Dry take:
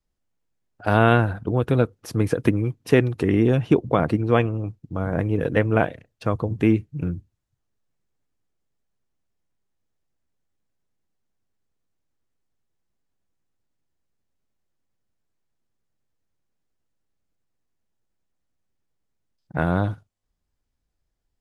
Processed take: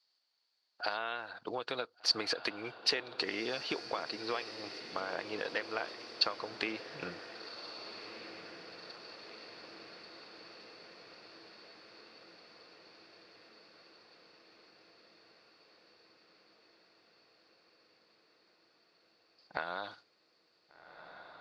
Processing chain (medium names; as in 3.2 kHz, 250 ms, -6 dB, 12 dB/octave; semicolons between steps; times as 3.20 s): high-pass 770 Hz 12 dB/octave; compression 12:1, threshold -37 dBFS, peak gain reduction 21.5 dB; resonant low-pass 4.5 kHz, resonance Q 13; on a send: echo that smears into a reverb 1544 ms, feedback 68%, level -11.5 dB; on the sum: trim +3 dB